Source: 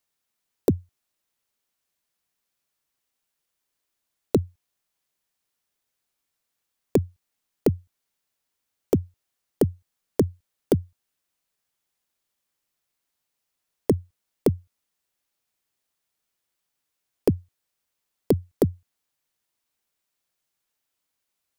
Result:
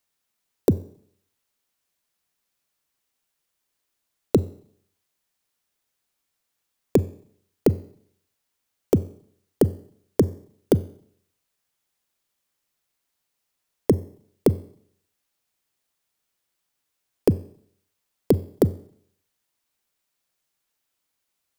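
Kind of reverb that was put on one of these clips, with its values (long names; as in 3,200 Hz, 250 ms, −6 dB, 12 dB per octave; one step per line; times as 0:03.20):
four-comb reverb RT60 0.62 s, combs from 30 ms, DRR 17.5 dB
level +2 dB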